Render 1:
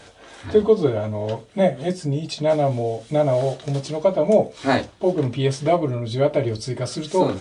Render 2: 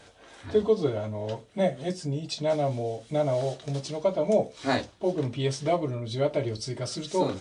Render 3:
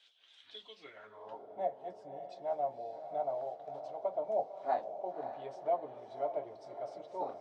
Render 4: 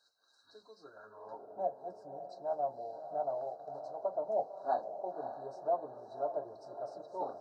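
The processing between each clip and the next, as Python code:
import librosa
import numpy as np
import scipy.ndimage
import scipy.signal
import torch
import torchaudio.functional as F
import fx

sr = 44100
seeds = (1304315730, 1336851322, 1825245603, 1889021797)

y1 = fx.dynamic_eq(x, sr, hz=5400.0, q=0.88, threshold_db=-44.0, ratio=4.0, max_db=5)
y1 = y1 * librosa.db_to_amplitude(-7.0)
y2 = fx.hpss(y1, sr, part='percussive', gain_db=6)
y2 = fx.echo_diffused(y2, sr, ms=564, feedback_pct=50, wet_db=-9.5)
y2 = fx.filter_sweep_bandpass(y2, sr, from_hz=3300.0, to_hz=750.0, start_s=0.66, end_s=1.4, q=4.5)
y2 = y2 * librosa.db_to_amplitude(-5.5)
y3 = fx.brickwall_bandstop(y2, sr, low_hz=1700.0, high_hz=3800.0)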